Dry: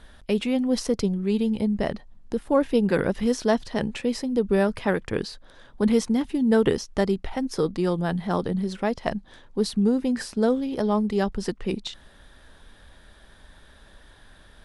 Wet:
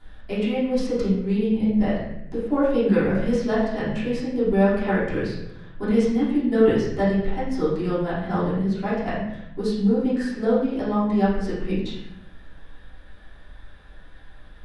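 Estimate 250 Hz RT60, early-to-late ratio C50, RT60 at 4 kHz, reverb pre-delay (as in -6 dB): 1.2 s, 1.0 dB, 0.70 s, 3 ms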